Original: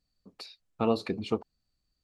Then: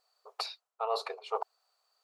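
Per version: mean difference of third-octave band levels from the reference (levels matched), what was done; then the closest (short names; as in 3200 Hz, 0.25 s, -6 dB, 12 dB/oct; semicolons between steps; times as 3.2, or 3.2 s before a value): 12.0 dB: band shelf 950 Hz +10.5 dB 1.3 oct; reverse; compressor 8:1, threshold -36 dBFS, peak gain reduction 19 dB; reverse; brick-wall FIR high-pass 400 Hz; gain +7.5 dB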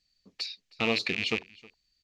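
7.0 dB: rattling part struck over -41 dBFS, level -27 dBFS; band shelf 3500 Hz +14 dB 2.3 oct; echo 0.315 s -23.5 dB; gain -3.5 dB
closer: second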